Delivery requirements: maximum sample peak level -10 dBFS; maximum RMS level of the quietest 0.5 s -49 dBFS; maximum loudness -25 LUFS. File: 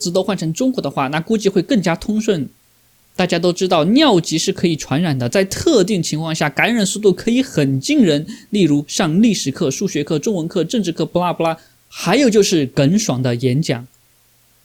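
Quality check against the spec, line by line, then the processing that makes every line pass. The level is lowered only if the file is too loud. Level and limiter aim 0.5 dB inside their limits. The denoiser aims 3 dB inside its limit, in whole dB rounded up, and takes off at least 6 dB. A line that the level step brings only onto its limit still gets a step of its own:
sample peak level -2.5 dBFS: fail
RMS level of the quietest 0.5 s -55 dBFS: OK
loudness -16.5 LUFS: fail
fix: gain -9 dB

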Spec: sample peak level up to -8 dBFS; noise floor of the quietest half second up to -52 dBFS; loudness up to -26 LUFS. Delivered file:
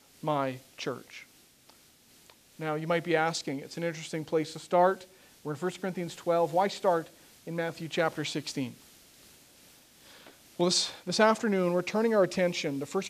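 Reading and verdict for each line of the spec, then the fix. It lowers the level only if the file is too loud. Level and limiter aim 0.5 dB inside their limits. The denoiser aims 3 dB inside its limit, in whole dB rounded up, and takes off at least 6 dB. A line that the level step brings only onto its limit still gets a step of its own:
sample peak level -8.5 dBFS: OK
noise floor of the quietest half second -60 dBFS: OK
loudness -29.5 LUFS: OK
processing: none

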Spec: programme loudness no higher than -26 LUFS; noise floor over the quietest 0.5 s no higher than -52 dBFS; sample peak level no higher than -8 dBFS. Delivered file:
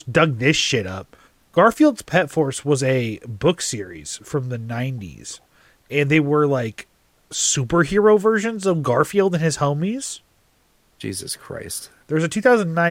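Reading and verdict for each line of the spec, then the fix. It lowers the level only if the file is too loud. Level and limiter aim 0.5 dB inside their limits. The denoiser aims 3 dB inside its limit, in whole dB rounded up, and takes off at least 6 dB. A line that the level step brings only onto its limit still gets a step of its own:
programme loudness -20.0 LUFS: fail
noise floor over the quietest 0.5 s -60 dBFS: OK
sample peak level -3.0 dBFS: fail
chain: gain -6.5 dB

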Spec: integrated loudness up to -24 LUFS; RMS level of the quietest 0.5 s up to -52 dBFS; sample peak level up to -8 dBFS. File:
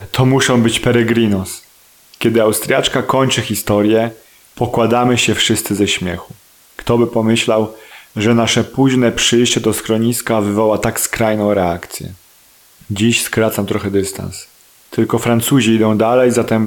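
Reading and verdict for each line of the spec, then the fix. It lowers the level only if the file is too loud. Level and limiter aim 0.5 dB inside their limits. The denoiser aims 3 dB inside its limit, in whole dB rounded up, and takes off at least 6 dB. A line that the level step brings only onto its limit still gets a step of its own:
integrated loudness -14.0 LUFS: fail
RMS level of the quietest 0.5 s -48 dBFS: fail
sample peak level -2.5 dBFS: fail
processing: gain -10.5 dB

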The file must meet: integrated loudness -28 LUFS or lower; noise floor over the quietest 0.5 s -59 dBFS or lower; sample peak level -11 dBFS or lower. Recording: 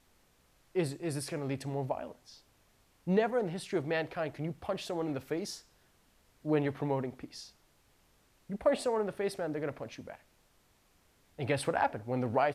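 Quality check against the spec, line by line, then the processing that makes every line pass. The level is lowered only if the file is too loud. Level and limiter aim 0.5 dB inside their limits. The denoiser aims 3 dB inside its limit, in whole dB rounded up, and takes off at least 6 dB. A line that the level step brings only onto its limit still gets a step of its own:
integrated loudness -34.5 LUFS: OK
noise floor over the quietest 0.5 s -68 dBFS: OK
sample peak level -16.0 dBFS: OK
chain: none

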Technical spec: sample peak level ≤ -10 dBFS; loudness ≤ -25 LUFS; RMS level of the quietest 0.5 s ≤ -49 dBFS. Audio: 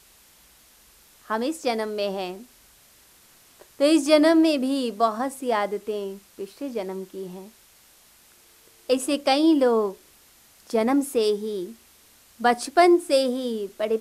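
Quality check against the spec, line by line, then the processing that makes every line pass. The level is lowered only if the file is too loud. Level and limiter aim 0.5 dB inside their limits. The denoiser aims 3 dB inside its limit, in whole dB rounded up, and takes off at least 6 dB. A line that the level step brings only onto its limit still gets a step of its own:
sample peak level -5.5 dBFS: fail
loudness -23.0 LUFS: fail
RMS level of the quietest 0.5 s -55 dBFS: OK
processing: gain -2.5 dB; limiter -10.5 dBFS

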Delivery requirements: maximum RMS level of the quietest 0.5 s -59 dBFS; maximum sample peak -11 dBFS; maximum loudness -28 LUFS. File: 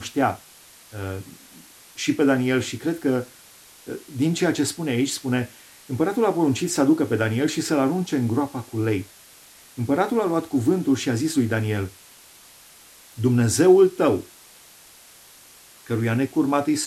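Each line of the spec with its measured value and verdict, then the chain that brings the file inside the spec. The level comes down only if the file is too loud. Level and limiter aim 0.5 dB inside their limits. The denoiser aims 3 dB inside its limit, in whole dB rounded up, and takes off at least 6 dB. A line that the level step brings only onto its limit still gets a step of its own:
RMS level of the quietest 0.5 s -49 dBFS: fail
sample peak -5.5 dBFS: fail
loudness -22.5 LUFS: fail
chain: denoiser 7 dB, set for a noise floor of -49 dBFS; gain -6 dB

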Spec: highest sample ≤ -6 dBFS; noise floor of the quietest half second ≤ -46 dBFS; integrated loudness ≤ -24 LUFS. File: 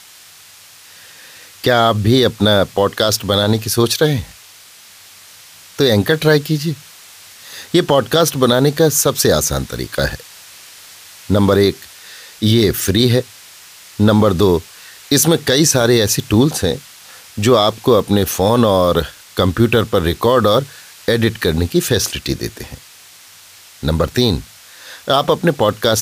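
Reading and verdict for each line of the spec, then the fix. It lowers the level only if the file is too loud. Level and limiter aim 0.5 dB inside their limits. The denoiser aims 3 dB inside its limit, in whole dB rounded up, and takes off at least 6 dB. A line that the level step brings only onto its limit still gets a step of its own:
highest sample -2.0 dBFS: fail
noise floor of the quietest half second -42 dBFS: fail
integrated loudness -15.0 LUFS: fail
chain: gain -9.5 dB

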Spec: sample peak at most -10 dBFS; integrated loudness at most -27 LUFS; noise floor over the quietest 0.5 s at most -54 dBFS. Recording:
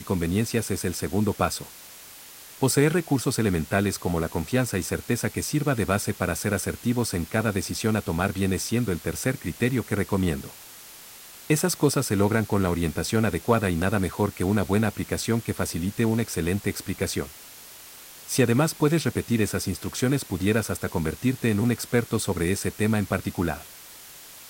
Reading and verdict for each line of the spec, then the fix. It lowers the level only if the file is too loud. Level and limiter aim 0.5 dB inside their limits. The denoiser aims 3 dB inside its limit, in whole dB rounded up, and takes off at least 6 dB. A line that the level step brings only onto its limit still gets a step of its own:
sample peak -7.0 dBFS: fail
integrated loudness -25.5 LUFS: fail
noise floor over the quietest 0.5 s -45 dBFS: fail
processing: denoiser 10 dB, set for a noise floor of -45 dBFS; gain -2 dB; limiter -10.5 dBFS

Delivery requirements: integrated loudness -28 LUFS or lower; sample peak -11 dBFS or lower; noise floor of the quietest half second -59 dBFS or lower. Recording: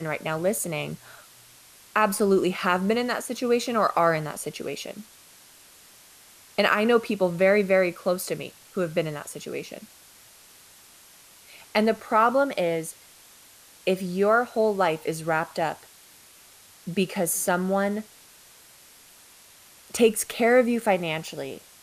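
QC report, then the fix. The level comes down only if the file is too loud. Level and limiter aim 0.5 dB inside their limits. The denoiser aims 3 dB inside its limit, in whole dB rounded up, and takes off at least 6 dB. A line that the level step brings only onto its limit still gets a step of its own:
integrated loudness -24.5 LUFS: fail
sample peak -7.5 dBFS: fail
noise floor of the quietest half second -52 dBFS: fail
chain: denoiser 6 dB, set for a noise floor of -52 dBFS; gain -4 dB

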